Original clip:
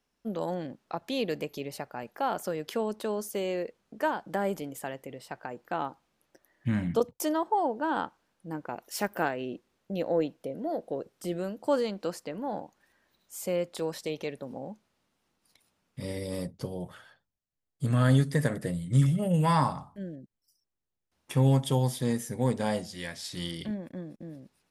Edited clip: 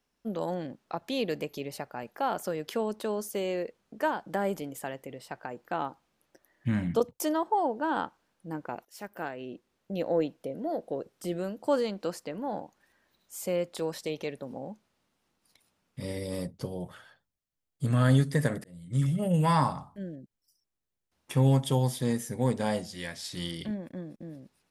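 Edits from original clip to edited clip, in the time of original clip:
8.85–10.05 s: fade in, from -16.5 dB
18.64–19.24 s: fade in

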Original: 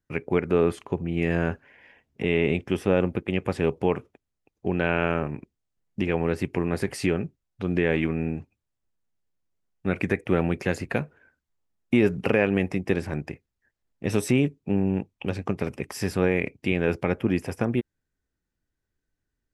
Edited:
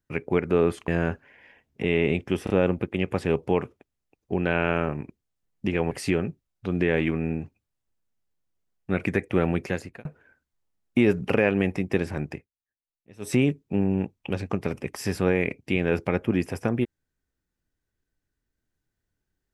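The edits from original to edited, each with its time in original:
0.88–1.28 s: delete
2.84 s: stutter 0.03 s, 3 plays
6.25–6.87 s: delete
10.57–11.01 s: fade out
13.30–14.30 s: dip -23.5 dB, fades 0.15 s

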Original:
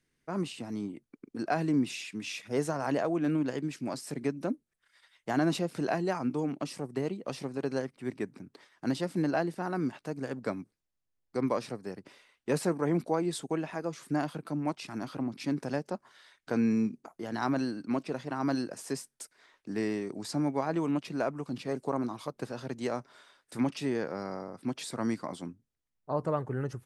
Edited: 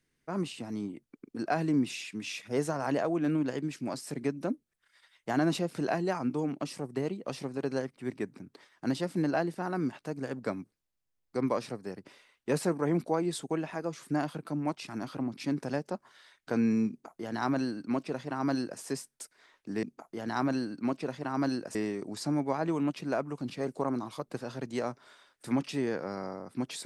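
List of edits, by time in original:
16.89–18.81 s: copy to 19.83 s

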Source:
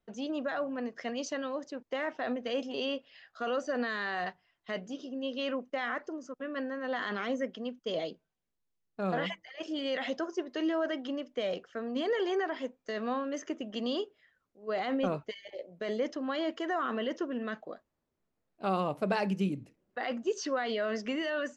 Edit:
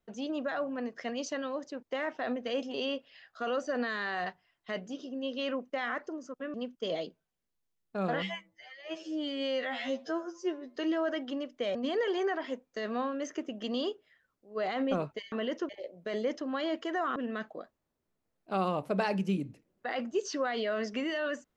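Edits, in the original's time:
6.54–7.58 s: delete
9.26–10.53 s: stretch 2×
11.52–11.87 s: delete
16.91–17.28 s: move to 15.44 s

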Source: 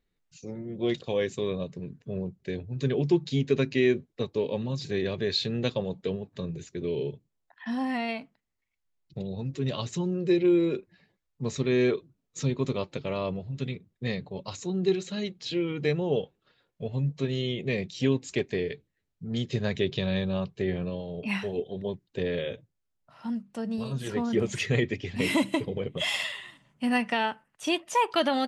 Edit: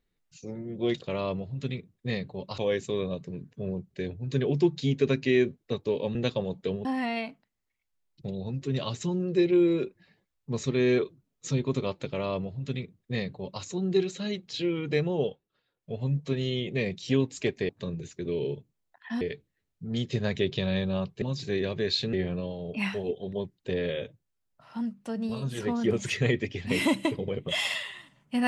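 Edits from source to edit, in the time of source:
4.64–5.55 s: move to 20.62 s
6.25–7.77 s: move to 18.61 s
13.04–14.55 s: copy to 1.07 s
16.02–16.97 s: dip -10 dB, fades 0.30 s equal-power

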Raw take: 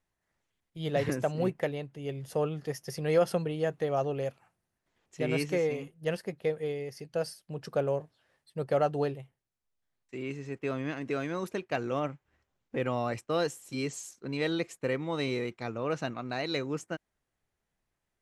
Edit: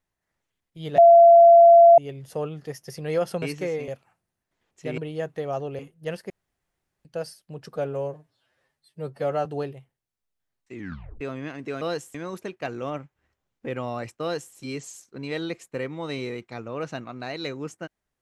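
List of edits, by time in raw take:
0.98–1.98 s: bleep 681 Hz -8 dBFS
3.42–4.23 s: swap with 5.33–5.79 s
6.30–7.05 s: room tone
7.73–8.88 s: stretch 1.5×
10.15 s: tape stop 0.48 s
13.31–13.64 s: copy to 11.24 s

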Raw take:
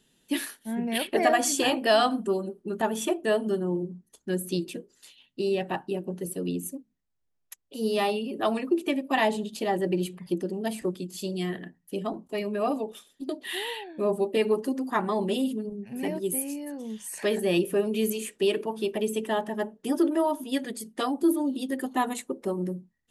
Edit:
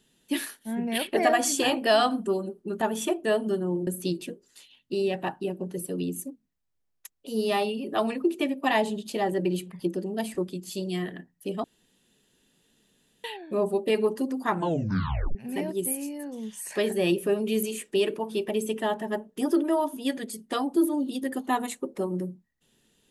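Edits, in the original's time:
3.87–4.34 s: delete
12.11–13.71 s: room tone
14.99 s: tape stop 0.83 s

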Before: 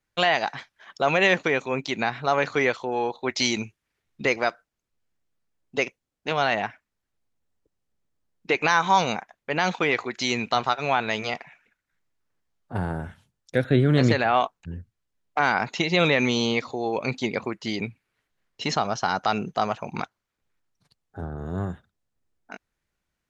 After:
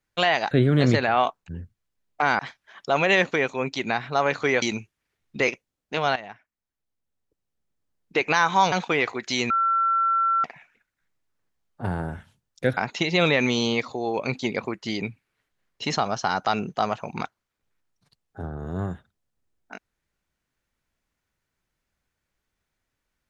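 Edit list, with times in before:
2.74–3.47 s: delete
4.33–5.82 s: delete
6.50–8.52 s: fade in, from -15 dB
9.06–9.63 s: delete
10.41–11.35 s: bleep 1.35 kHz -18.5 dBFS
13.68–15.56 s: move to 0.51 s

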